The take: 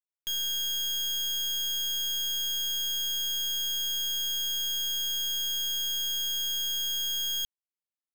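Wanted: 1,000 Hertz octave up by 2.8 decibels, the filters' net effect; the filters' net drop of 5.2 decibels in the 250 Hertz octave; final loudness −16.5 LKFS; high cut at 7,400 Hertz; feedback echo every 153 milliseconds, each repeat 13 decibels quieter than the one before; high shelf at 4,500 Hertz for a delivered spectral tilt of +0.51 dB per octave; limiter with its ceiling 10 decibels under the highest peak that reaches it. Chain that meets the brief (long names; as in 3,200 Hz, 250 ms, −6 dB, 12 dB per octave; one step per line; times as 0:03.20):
low-pass filter 7,400 Hz
parametric band 250 Hz −9 dB
parametric band 1,000 Hz +4.5 dB
high-shelf EQ 4,500 Hz −5 dB
brickwall limiter −39.5 dBFS
repeating echo 153 ms, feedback 22%, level −13 dB
level +24.5 dB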